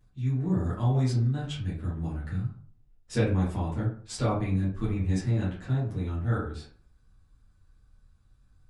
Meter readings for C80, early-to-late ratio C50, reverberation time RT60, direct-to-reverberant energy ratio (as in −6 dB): 10.0 dB, 5.5 dB, 0.50 s, −9.5 dB